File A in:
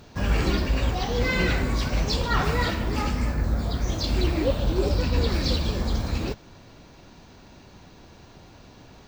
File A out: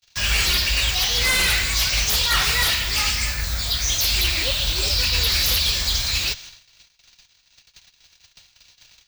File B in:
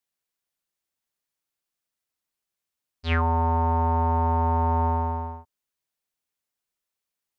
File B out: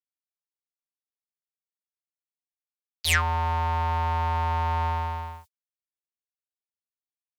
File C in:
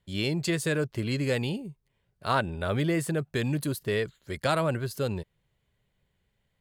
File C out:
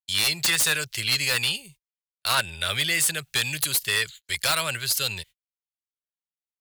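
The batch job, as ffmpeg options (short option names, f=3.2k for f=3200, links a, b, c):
-filter_complex "[0:a]agate=range=-45dB:threshold=-45dB:ratio=16:detection=peak,equalizer=f=270:t=o:w=2:g=-15,acrossover=split=120|700|2300[a][b][c][d];[d]aeval=exprs='0.141*sin(PI/2*7.08*val(0)/0.141)':c=same[e];[a][b][c][e]amix=inputs=4:normalize=0"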